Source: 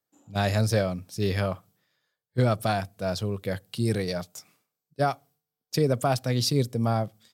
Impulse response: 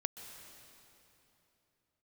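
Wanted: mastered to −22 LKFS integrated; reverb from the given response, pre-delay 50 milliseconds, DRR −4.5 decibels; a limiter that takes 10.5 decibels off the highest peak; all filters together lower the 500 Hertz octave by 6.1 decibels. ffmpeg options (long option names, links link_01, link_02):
-filter_complex "[0:a]equalizer=frequency=500:width_type=o:gain=-8,alimiter=limit=-23.5dB:level=0:latency=1,asplit=2[link_01][link_02];[1:a]atrim=start_sample=2205,adelay=50[link_03];[link_02][link_03]afir=irnorm=-1:irlink=0,volume=4.5dB[link_04];[link_01][link_04]amix=inputs=2:normalize=0,volume=7.5dB"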